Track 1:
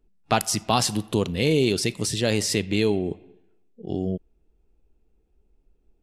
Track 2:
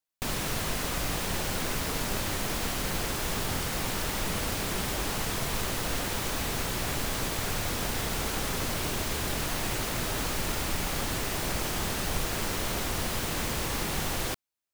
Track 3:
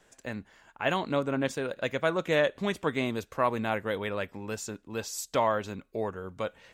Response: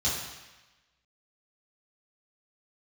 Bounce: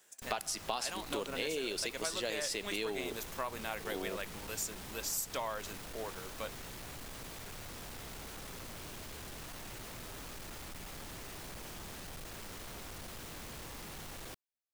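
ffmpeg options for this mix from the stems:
-filter_complex "[0:a]highpass=480,volume=-4dB[link_01];[1:a]asoftclip=type=tanh:threshold=-32.5dB,volume=-10.5dB[link_02];[2:a]aemphasis=mode=production:type=riaa,volume=-7.5dB[link_03];[link_01][link_02][link_03]amix=inputs=3:normalize=0,acompressor=threshold=-33dB:ratio=6"

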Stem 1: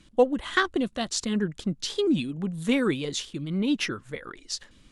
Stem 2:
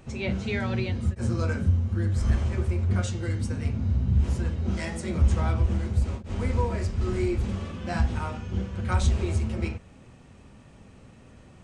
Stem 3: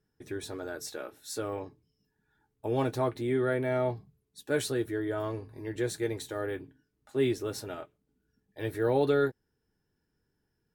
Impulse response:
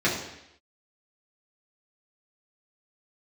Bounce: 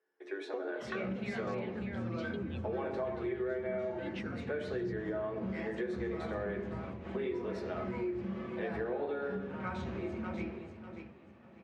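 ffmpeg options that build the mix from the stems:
-filter_complex "[0:a]adelay=350,volume=-12.5dB[link_01];[1:a]flanger=delay=5.2:depth=1.8:regen=-83:speed=0.39:shape=triangular,adelay=750,volume=-4.5dB,asplit=3[link_02][link_03][link_04];[link_03]volume=-14.5dB[link_05];[link_04]volume=-5dB[link_06];[2:a]highpass=frequency=350:width=0.5412,highpass=frequency=350:width=1.3066,volume=0.5dB,asplit=3[link_07][link_08][link_09];[link_08]volume=-17dB[link_10];[link_09]apad=whole_len=546342[link_11];[link_02][link_11]sidechaincompress=threshold=-35dB:ratio=8:attack=16:release=278[link_12];[link_01][link_07]amix=inputs=2:normalize=0,highpass=400,acompressor=threshold=-35dB:ratio=6,volume=0dB[link_13];[3:a]atrim=start_sample=2205[link_14];[link_05][link_10]amix=inputs=2:normalize=0[link_15];[link_15][link_14]afir=irnorm=-1:irlink=0[link_16];[link_06]aecho=0:1:591|1182|1773|2364:1|0.23|0.0529|0.0122[link_17];[link_12][link_13][link_16][link_17]amix=inputs=4:normalize=0,highpass=180,lowpass=2400,bandreject=frequency=50:width_type=h:width=6,bandreject=frequency=100:width_type=h:width=6,bandreject=frequency=150:width_type=h:width=6,bandreject=frequency=200:width_type=h:width=6,bandreject=frequency=250:width_type=h:width=6,bandreject=frequency=300:width_type=h:width=6,bandreject=frequency=350:width_type=h:width=6,acompressor=threshold=-33dB:ratio=6"

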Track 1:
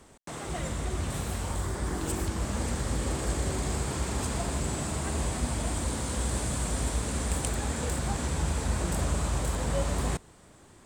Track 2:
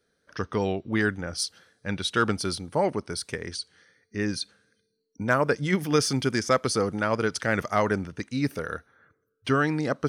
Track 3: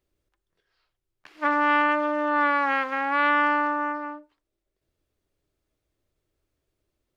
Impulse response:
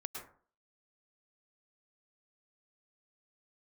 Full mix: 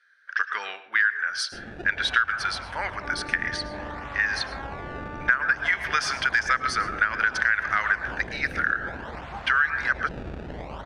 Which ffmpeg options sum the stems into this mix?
-filter_complex "[0:a]lowshelf=frequency=550:width_type=q:width=1.5:gain=-10,acrusher=samples=24:mix=1:aa=0.000001:lfo=1:lforange=38.4:lforate=0.58,adelay=1250,volume=-1.5dB[link_01];[1:a]highpass=frequency=1600:width_type=q:width=5,aemphasis=mode=production:type=75kf,volume=0.5dB,asplit=2[link_02][link_03];[link_03]volume=-5dB[link_04];[2:a]alimiter=limit=-18.5dB:level=0:latency=1,adelay=1600,volume=-10.5dB[link_05];[3:a]atrim=start_sample=2205[link_06];[link_04][link_06]afir=irnorm=-1:irlink=0[link_07];[link_01][link_02][link_05][link_07]amix=inputs=4:normalize=0,lowpass=2700,acompressor=threshold=-19dB:ratio=5"

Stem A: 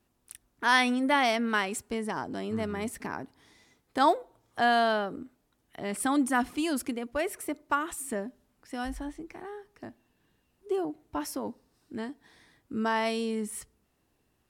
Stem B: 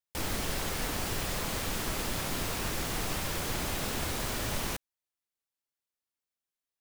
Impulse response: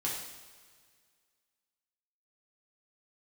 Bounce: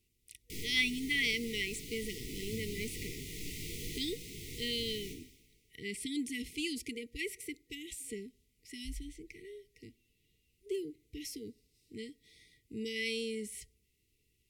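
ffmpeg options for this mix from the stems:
-filter_complex "[0:a]acrossover=split=6000[link_01][link_02];[link_02]acompressor=threshold=-46dB:ratio=4:attack=1:release=60[link_03];[link_01][link_03]amix=inputs=2:normalize=0,equalizer=frequency=260:width_type=o:width=1.7:gain=-11,acontrast=28,volume=-4.5dB,asplit=2[link_04][link_05];[1:a]flanger=delay=17.5:depth=3.8:speed=1.3,adelay=350,volume=-8dB,asplit=2[link_06][link_07];[link_07]volume=-7dB[link_08];[link_05]apad=whole_len=315658[link_09];[link_06][link_09]sidechaincompress=threshold=-34dB:ratio=8:attack=6.9:release=779[link_10];[2:a]atrim=start_sample=2205[link_11];[link_08][link_11]afir=irnorm=-1:irlink=0[link_12];[link_04][link_10][link_12]amix=inputs=3:normalize=0,afftfilt=real='re*(1-between(b*sr/4096,480,1900))':imag='im*(1-between(b*sr/4096,480,1900))':win_size=4096:overlap=0.75,asoftclip=type=tanh:threshold=-16dB"

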